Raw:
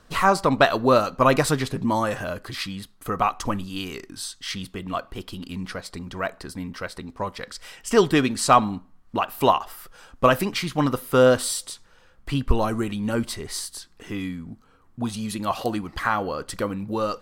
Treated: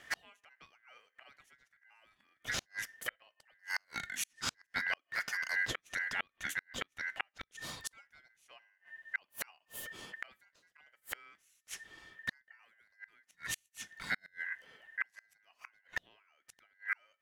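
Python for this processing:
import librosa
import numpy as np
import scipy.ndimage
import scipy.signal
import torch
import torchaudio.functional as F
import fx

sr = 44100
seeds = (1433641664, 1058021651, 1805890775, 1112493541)

y = x * np.sin(2.0 * np.pi * 1800.0 * np.arange(len(x)) / sr)
y = fx.gate_flip(y, sr, shuts_db=-22.0, range_db=-41)
y = y * 10.0 ** (1.0 / 20.0)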